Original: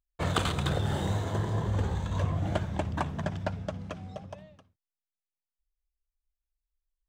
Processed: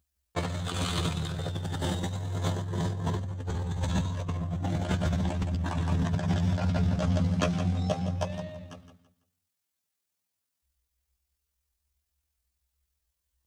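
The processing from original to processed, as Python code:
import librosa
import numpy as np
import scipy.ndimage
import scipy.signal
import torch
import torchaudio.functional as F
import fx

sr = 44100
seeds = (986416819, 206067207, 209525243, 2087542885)

y = fx.bass_treble(x, sr, bass_db=5, treble_db=4)
y = fx.echo_feedback(y, sr, ms=87, feedback_pct=28, wet_db=-11)
y = fx.stretch_grains(y, sr, factor=1.9, grain_ms=48.0)
y = scipy.signal.sosfilt(scipy.signal.butter(2, 62.0, 'highpass', fs=sr, output='sos'), y)
y = fx.over_compress(y, sr, threshold_db=-34.0, ratio=-1.0)
y = fx.dynamic_eq(y, sr, hz=4700.0, q=0.86, threshold_db=-56.0, ratio=4.0, max_db=4)
y = y * librosa.db_to_amplitude(4.5)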